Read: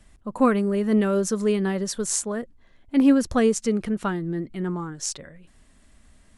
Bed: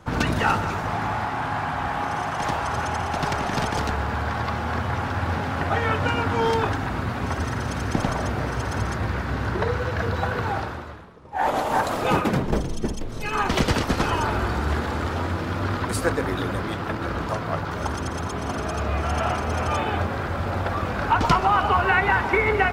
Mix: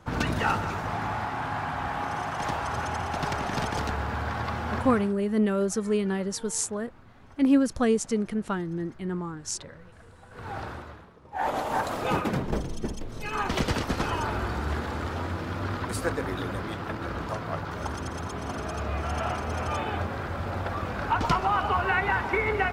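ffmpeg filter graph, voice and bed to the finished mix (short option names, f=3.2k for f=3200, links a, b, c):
-filter_complex "[0:a]adelay=4450,volume=-3.5dB[a];[1:a]volume=17dB,afade=t=out:st=4.78:d=0.38:silence=0.0749894,afade=t=in:st=10.3:d=0.4:silence=0.0841395[b];[a][b]amix=inputs=2:normalize=0"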